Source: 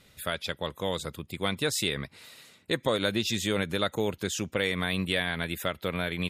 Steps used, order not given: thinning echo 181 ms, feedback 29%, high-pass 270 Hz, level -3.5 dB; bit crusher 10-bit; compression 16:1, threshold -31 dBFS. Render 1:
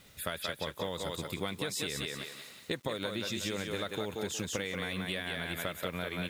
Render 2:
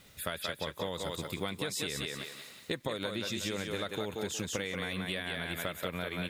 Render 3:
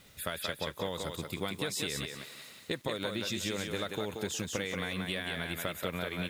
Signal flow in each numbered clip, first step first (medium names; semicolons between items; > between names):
thinning echo > compression > bit crusher; thinning echo > bit crusher > compression; compression > thinning echo > bit crusher